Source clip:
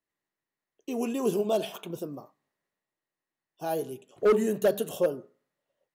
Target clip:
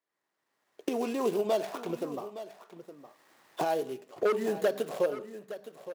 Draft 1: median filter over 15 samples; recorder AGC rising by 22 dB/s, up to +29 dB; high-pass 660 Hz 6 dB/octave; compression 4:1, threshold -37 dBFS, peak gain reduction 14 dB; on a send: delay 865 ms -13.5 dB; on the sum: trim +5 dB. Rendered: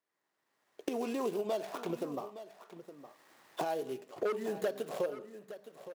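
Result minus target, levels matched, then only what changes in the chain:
compression: peak gain reduction +7 dB
change: compression 4:1, threshold -28 dBFS, peak gain reduction 7.5 dB

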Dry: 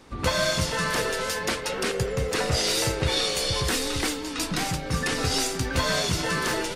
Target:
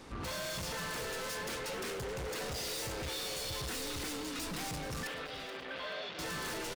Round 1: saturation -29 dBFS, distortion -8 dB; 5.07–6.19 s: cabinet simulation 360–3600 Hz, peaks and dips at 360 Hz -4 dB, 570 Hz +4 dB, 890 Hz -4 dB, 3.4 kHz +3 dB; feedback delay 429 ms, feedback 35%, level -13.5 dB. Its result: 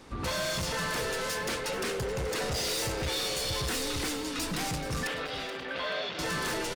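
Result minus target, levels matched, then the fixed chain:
saturation: distortion -4 dB
saturation -38 dBFS, distortion -4 dB; 5.07–6.19 s: cabinet simulation 360–3600 Hz, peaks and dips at 360 Hz -4 dB, 570 Hz +4 dB, 890 Hz -4 dB, 3.4 kHz +3 dB; feedback delay 429 ms, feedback 35%, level -13.5 dB

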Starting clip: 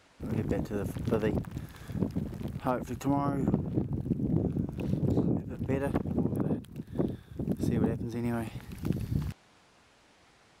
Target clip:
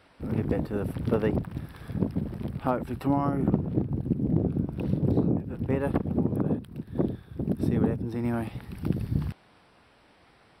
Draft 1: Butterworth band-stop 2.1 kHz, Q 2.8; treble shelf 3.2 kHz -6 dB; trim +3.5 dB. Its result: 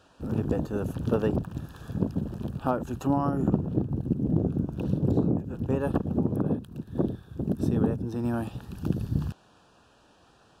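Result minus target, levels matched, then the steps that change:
8 kHz band +4.0 dB
change: Butterworth band-stop 6.7 kHz, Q 2.8

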